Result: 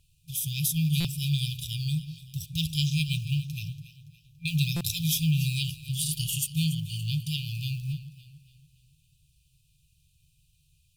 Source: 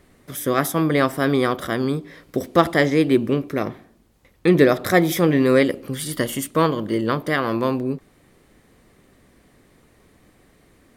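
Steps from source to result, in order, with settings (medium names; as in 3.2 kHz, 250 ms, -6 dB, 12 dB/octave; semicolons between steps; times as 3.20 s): companding laws mixed up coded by A; on a send: echo whose repeats swap between lows and highs 142 ms, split 1.1 kHz, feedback 65%, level -11 dB; on the sum: FFT band-reject 170–2400 Hz; buffer glitch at 1.00/4.76 s, samples 256, times 7; trim +1.5 dB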